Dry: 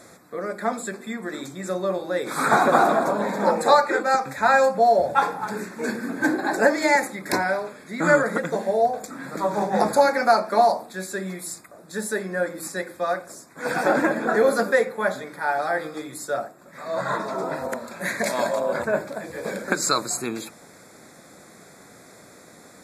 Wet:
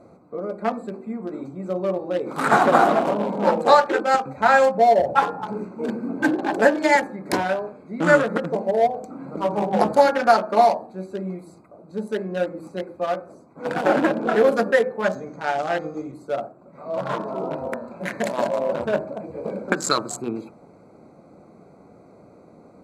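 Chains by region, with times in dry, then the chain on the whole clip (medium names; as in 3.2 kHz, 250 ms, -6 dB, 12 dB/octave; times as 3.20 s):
15.04–16.12 s: resonant low-pass 6.5 kHz, resonance Q 14 + tone controls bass +4 dB, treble -1 dB + band-stop 900 Hz, Q 16
whole clip: local Wiener filter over 25 samples; treble shelf 11 kHz -6.5 dB; de-hum 127.3 Hz, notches 14; trim +2.5 dB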